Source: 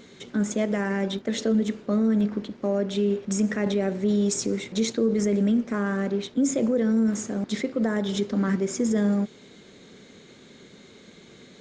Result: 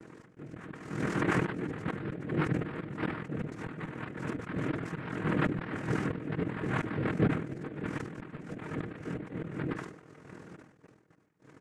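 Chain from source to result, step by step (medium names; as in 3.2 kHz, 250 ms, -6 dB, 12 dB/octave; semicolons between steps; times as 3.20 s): chunks repeated in reverse 488 ms, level 0 dB; peaking EQ 300 Hz +12 dB 2.2 oct; AM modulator 41 Hz, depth 45%; low-pass 2.4 kHz 24 dB/octave; noise-vocoded speech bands 3; dynamic bell 500 Hz, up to -5 dB, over -26 dBFS, Q 0.89; slow attack 598 ms; comb 6.4 ms, depth 31%; gate -46 dBFS, range -17 dB; decay stretcher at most 77 dB/s; trim -8.5 dB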